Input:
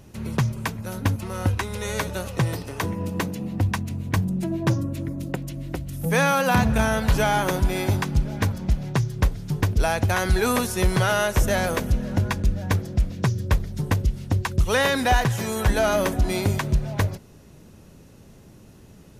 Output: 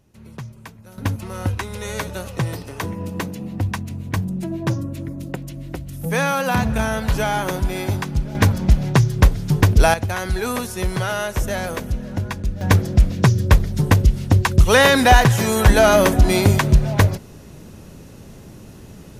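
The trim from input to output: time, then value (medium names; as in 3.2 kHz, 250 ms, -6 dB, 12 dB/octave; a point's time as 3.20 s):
-11.5 dB
from 0.98 s 0 dB
from 8.35 s +8 dB
from 9.94 s -2 dB
from 12.61 s +8 dB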